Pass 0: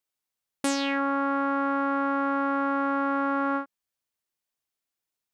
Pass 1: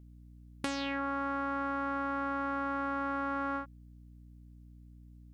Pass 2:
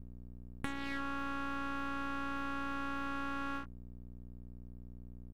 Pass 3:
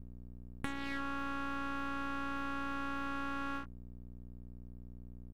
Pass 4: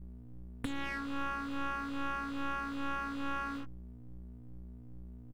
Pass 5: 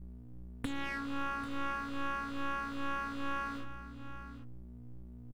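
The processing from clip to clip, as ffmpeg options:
-filter_complex "[0:a]acrossover=split=980|5200[a][b][c];[a]acompressor=threshold=-37dB:ratio=4[d];[b]acompressor=threshold=-36dB:ratio=4[e];[c]acompressor=threshold=-56dB:ratio=4[f];[d][e][f]amix=inputs=3:normalize=0,aeval=exprs='val(0)+0.00251*(sin(2*PI*60*n/s)+sin(2*PI*2*60*n/s)/2+sin(2*PI*3*60*n/s)/3+sin(2*PI*4*60*n/s)/4+sin(2*PI*5*60*n/s)/5)':c=same"
-af "firequalizer=gain_entry='entry(240,0);entry(380,-28);entry(860,-12);entry(1900,-6);entry(5000,-29);entry(8200,-10)':delay=0.05:min_phase=1,aeval=exprs='max(val(0),0)':c=same,volume=7dB"
-af anull
-filter_complex "[0:a]asplit=2[a][b];[b]adelay=3.2,afreqshift=2.4[c];[a][c]amix=inputs=2:normalize=1,volume=4.5dB"
-af "aecho=1:1:792:0.237"

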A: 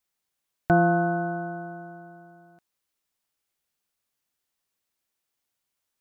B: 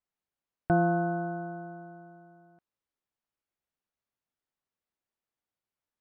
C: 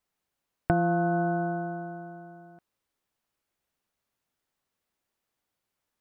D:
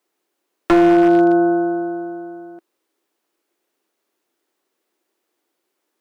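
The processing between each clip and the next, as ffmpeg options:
-af "lowpass=f=1.3k:p=1,volume=-4dB"
-af "acompressor=threshold=-30dB:ratio=6,volume=8.5dB"
-af "highpass=f=340:t=q:w=3.9,aeval=exprs='0.188*(abs(mod(val(0)/0.188+3,4)-2)-1)':c=same,volume=8dB"

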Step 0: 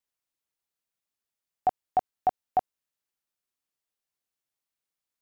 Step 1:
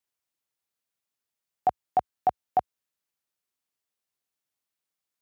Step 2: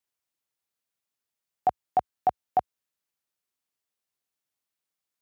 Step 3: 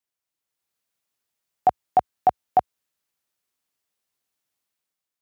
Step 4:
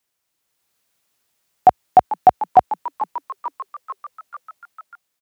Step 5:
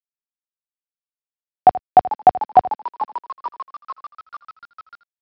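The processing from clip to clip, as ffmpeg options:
-af "highpass=f=60:w=0.5412,highpass=f=60:w=1.3066,volume=1dB"
-af anull
-af "dynaudnorm=f=150:g=7:m=7dB,volume=-1.5dB"
-filter_complex "[0:a]asplit=7[a][b][c][d][e][f][g];[b]adelay=443,afreqshift=110,volume=-17.5dB[h];[c]adelay=886,afreqshift=220,volume=-21.5dB[i];[d]adelay=1329,afreqshift=330,volume=-25.5dB[j];[e]adelay=1772,afreqshift=440,volume=-29.5dB[k];[f]adelay=2215,afreqshift=550,volume=-33.6dB[l];[g]adelay=2658,afreqshift=660,volume=-37.6dB[m];[a][h][i][j][k][l][m]amix=inputs=7:normalize=0,alimiter=level_in=12.5dB:limit=-1dB:release=50:level=0:latency=1,volume=-1dB"
-af "aresample=11025,acrusher=bits=7:mix=0:aa=0.000001,aresample=44100,aecho=1:1:81:0.15"

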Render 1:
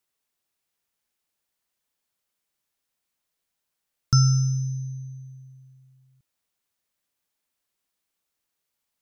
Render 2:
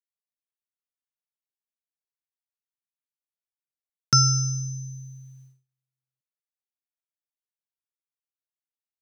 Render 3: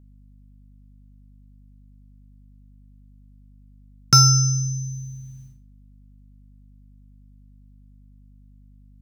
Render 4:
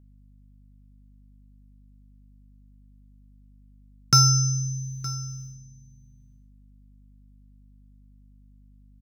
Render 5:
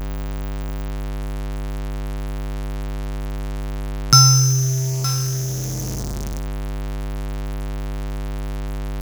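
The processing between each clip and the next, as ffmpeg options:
-af "highpass=240,agate=range=-32dB:threshold=-57dB:ratio=16:detection=peak,volume=7dB"
-af "aeval=exprs='val(0)+0.00178*(sin(2*PI*50*n/s)+sin(2*PI*2*50*n/s)/2+sin(2*PI*3*50*n/s)/3+sin(2*PI*4*50*n/s)/4+sin(2*PI*5*50*n/s)/5)':c=same,asoftclip=type=tanh:threshold=-8.5dB,volume=6dB"
-af "aecho=1:1:916:0.126,volume=-3.5dB"
-af "aeval=exprs='val(0)+0.5*0.0562*sgn(val(0))':c=same,volume=5dB"

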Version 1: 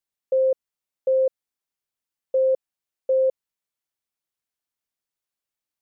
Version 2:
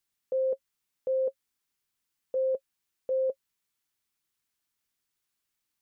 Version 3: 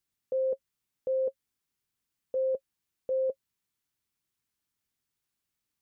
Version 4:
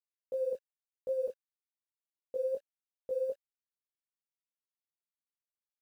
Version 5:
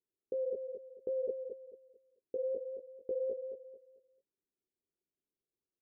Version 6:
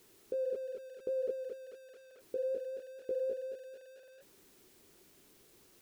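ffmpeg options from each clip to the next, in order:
-af "equalizer=f=630:w=1.4:g=-6.5,bandreject=f=540:w=14,alimiter=level_in=5.5dB:limit=-24dB:level=0:latency=1:release=55,volume=-5.5dB,volume=6dB"
-af "equalizer=f=100:w=0.33:g=7.5,volume=-3dB"
-af "acrusher=bits=9:mix=0:aa=0.000001,flanger=delay=16.5:depth=5.1:speed=2.6,volume=-2dB"
-af "alimiter=level_in=12.5dB:limit=-24dB:level=0:latency=1:release=113,volume=-12.5dB,lowpass=f=380:t=q:w=4,aecho=1:1:221|442|663|884:0.447|0.138|0.0429|0.0133,volume=5.5dB"
-af "aeval=exprs='val(0)+0.5*0.00224*sgn(val(0))':c=same"

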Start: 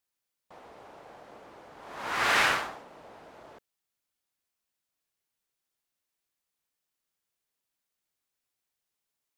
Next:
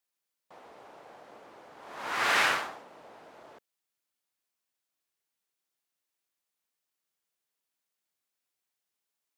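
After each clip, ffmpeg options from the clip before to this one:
-af "highpass=f=190:p=1,volume=-1dB"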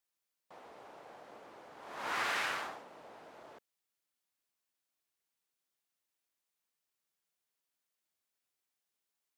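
-af "acompressor=threshold=-29dB:ratio=10,volume=-2dB"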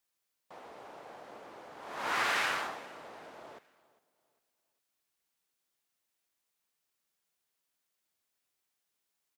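-af "aecho=1:1:402|804|1206:0.0891|0.0321|0.0116,volume=4dB"

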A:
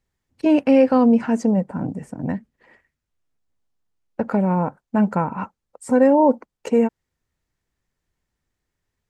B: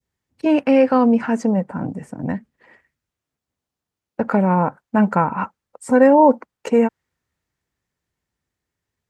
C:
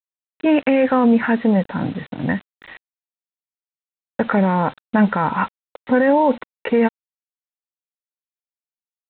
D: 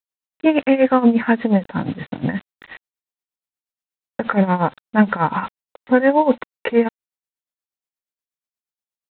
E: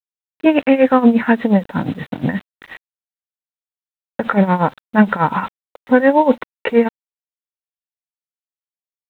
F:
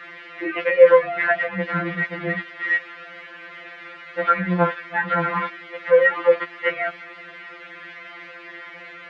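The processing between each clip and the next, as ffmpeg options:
-af "highpass=62,adynamicequalizer=threshold=0.02:dfrequency=1500:dqfactor=0.7:tfrequency=1500:tqfactor=0.7:attack=5:release=100:ratio=0.375:range=3:mode=boostabove:tftype=bell,dynaudnorm=f=480:g=9:m=11.5dB,volume=-1dB"
-af "equalizer=f=1.9k:t=o:w=0.53:g=9,alimiter=limit=-10dB:level=0:latency=1:release=16,aresample=8000,acrusher=bits=6:mix=0:aa=0.000001,aresample=44100,volume=2.5dB"
-af "tremolo=f=8.4:d=0.8,volume=3.5dB"
-af "acrusher=bits=8:mix=0:aa=0.5,volume=2.5dB"
-af "aeval=exprs='val(0)+0.5*0.168*sgn(val(0))':c=same,highpass=270,equalizer=f=280:t=q:w=4:g=8,equalizer=f=580:t=q:w=4:g=4,equalizer=f=850:t=q:w=4:g=-8,equalizer=f=1.4k:t=q:w=4:g=4,equalizer=f=2k:t=q:w=4:g=9,lowpass=f=2.6k:w=0.5412,lowpass=f=2.6k:w=1.3066,afftfilt=real='re*2.83*eq(mod(b,8),0)':imag='im*2.83*eq(mod(b,8),0)':win_size=2048:overlap=0.75,volume=-4dB"

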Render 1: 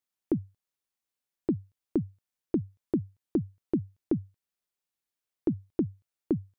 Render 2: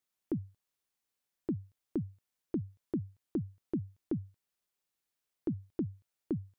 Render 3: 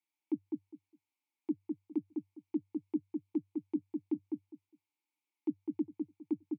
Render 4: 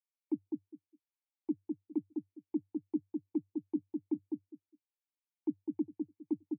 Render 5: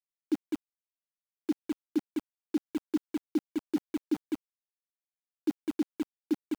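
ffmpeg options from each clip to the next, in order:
-af "alimiter=level_in=2.5dB:limit=-24dB:level=0:latency=1:release=173,volume=-2.5dB,volume=2dB"
-filter_complex "[0:a]asplit=3[a][b][c];[a]bandpass=f=300:t=q:w=8,volume=0dB[d];[b]bandpass=f=870:t=q:w=8,volume=-6dB[e];[c]bandpass=f=2.24k:t=q:w=8,volume=-9dB[f];[d][e][f]amix=inputs=3:normalize=0,aemphasis=mode=production:type=riaa,asplit=2[g][h];[h]adelay=204,lowpass=f=1.1k:p=1,volume=-3.5dB,asplit=2[i][j];[j]adelay=204,lowpass=f=1.1k:p=1,volume=0.2,asplit=2[k][l];[l]adelay=204,lowpass=f=1.1k:p=1,volume=0.2[m];[g][i][k][m]amix=inputs=4:normalize=0,volume=10.5dB"
-af "afftdn=nr=14:nf=-59"
-af "aeval=exprs='val(0)*gte(abs(val(0)),0.00944)':c=same,volume=5dB"

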